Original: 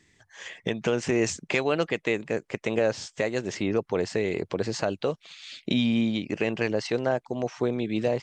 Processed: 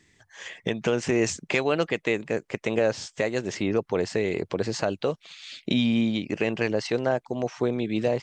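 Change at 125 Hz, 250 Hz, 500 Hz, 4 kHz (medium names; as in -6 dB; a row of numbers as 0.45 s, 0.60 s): +1.0 dB, +1.0 dB, +1.0 dB, +1.0 dB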